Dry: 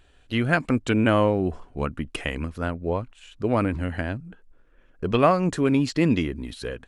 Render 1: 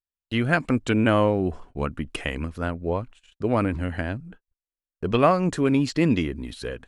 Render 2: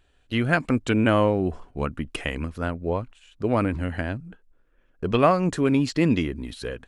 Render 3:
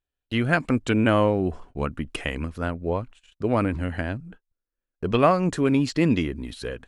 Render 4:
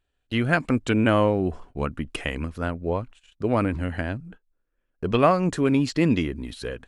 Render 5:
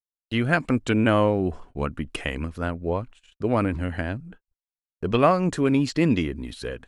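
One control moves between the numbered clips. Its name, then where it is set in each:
noise gate, range: −45, −6, −31, −19, −60 decibels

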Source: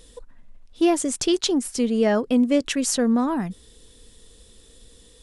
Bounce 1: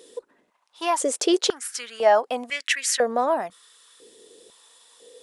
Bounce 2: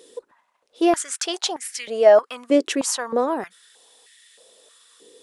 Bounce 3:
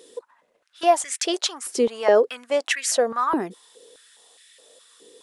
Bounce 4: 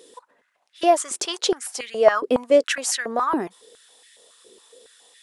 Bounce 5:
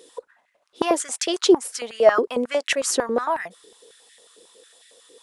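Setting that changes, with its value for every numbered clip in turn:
high-pass on a step sequencer, speed: 2, 3.2, 4.8, 7.2, 11 Hertz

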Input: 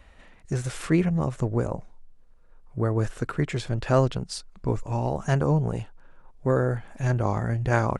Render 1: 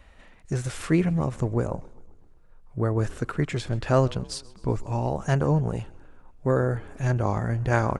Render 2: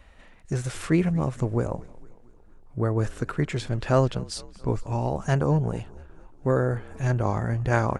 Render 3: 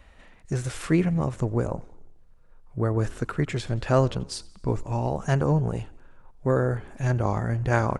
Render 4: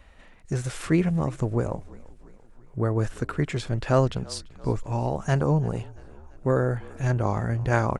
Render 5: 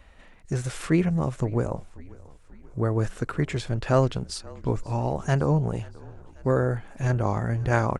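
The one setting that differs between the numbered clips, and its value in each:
echo with shifted repeats, delay time: 130, 227, 88, 339, 536 milliseconds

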